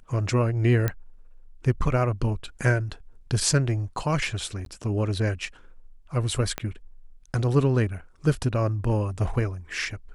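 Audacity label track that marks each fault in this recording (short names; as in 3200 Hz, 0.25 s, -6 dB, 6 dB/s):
0.880000	0.880000	pop -11 dBFS
4.650000	4.660000	gap 12 ms
6.580000	6.580000	pop -13 dBFS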